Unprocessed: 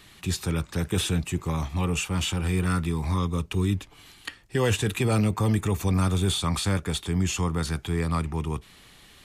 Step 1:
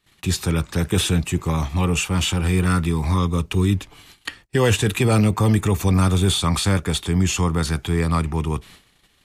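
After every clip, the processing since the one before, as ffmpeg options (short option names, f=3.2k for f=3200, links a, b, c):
-af "agate=range=-25dB:threshold=-49dB:ratio=16:detection=peak,volume=6dB"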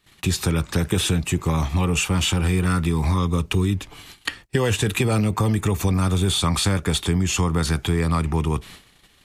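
-af "acompressor=threshold=-21dB:ratio=6,volume=4dB"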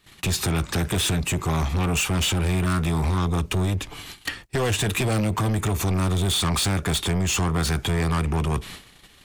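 -af "asoftclip=type=tanh:threshold=-23.5dB,volume=4dB"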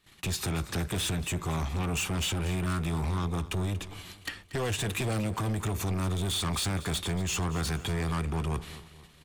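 -af "aecho=1:1:234|468|702|936:0.15|0.0658|0.029|0.0127,volume=-7.5dB"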